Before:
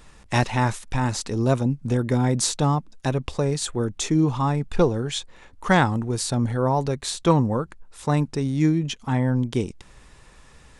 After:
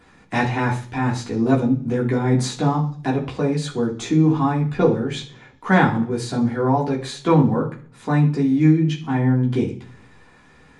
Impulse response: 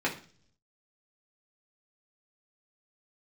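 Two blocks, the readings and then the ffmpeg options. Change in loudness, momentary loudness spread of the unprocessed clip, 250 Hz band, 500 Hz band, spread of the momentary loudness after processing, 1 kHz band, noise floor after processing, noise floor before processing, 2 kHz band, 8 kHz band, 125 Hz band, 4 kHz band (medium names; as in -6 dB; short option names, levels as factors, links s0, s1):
+3.0 dB, 7 LU, +5.0 dB, +2.5 dB, 8 LU, +2.0 dB, -51 dBFS, -51 dBFS, +3.0 dB, -7.5 dB, +2.5 dB, -2.5 dB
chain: -filter_complex "[1:a]atrim=start_sample=2205,asetrate=41454,aresample=44100[s0];[0:a][s0]afir=irnorm=-1:irlink=0,volume=0.422"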